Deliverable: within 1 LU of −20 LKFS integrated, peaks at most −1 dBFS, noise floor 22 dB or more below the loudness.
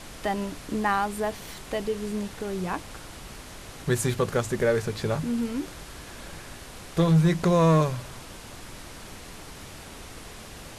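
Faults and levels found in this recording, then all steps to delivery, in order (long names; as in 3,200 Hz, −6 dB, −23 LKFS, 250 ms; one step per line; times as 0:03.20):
share of clipped samples 0.4%; peaks flattened at −14.0 dBFS; background noise floor −43 dBFS; target noise floor −48 dBFS; integrated loudness −26.0 LKFS; sample peak −14.0 dBFS; target loudness −20.0 LKFS
→ clipped peaks rebuilt −14 dBFS
noise reduction from a noise print 6 dB
level +6 dB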